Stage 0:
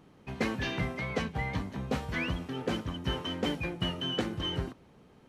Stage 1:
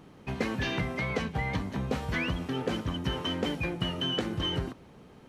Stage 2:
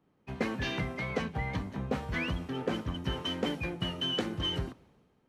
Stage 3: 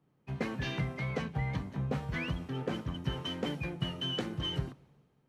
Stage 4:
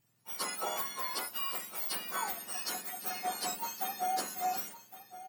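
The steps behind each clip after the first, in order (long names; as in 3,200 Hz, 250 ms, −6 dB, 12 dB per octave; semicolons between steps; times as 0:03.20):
downward compressor, threshold −32 dBFS, peak gain reduction 7 dB; level +5.5 dB
multiband upward and downward expander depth 70%; level −2.5 dB
parametric band 140 Hz +11.5 dB 0.3 octaves; level −3.5 dB
frequency axis turned over on the octave scale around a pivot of 1,500 Hz; single-tap delay 1,113 ms −15 dB; level +4 dB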